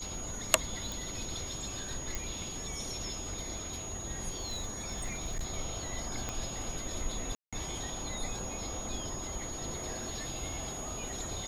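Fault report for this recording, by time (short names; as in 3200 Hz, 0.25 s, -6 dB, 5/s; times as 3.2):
tone 6700 Hz -41 dBFS
0.92 pop
2.15 pop
4.37–5.46 clipped -30.5 dBFS
6.29 pop -20 dBFS
7.35–7.53 gap 0.176 s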